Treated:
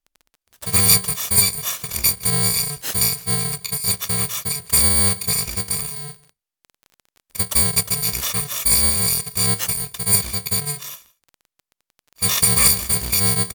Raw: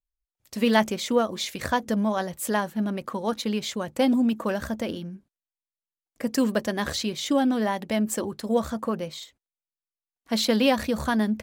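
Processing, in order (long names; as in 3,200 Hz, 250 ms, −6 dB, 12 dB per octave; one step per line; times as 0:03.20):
samples in bit-reversed order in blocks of 128 samples
change of speed 0.844×
on a send: single-tap delay 163 ms −22.5 dB
on the sum: surface crackle 19 per second −39 dBFS
level +6 dB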